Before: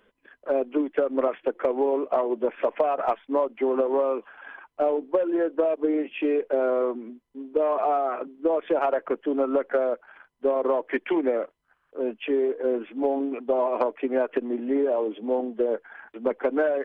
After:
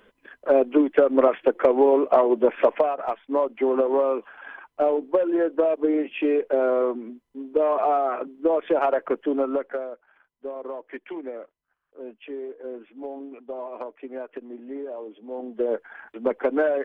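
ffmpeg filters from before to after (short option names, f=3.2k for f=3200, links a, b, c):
-af "volume=25dB,afade=t=out:st=2.66:d=0.32:silence=0.281838,afade=t=in:st=2.98:d=0.51:silence=0.446684,afade=t=out:st=9.27:d=0.63:silence=0.237137,afade=t=in:st=15.31:d=0.44:silence=0.251189"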